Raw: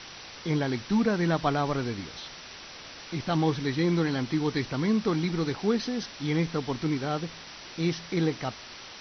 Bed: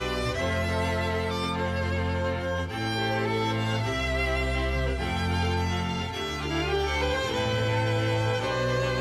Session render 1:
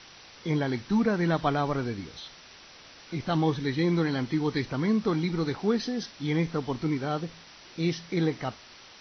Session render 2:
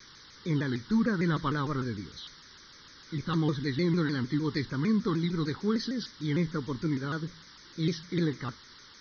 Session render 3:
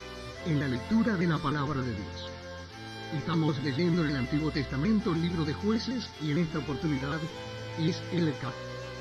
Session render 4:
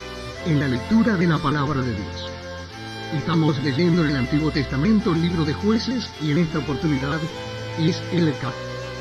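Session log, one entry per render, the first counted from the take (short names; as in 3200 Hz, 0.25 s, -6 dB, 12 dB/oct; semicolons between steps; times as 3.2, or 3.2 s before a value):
noise print and reduce 6 dB
fixed phaser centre 2600 Hz, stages 6; shaped vibrato saw down 6.6 Hz, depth 160 cents
add bed -13.5 dB
gain +8.5 dB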